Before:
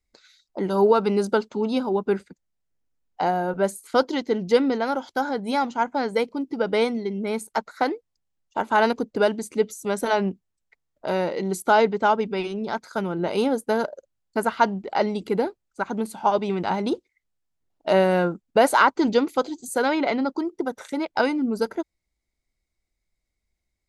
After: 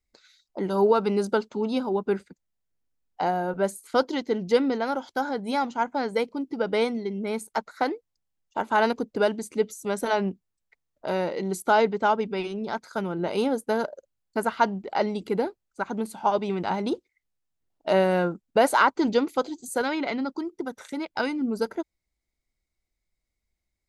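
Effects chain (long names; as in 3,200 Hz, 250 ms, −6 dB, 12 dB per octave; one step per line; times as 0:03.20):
0:19.81–0:21.41: dynamic equaliser 620 Hz, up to −5 dB, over −37 dBFS, Q 0.8
level −2.5 dB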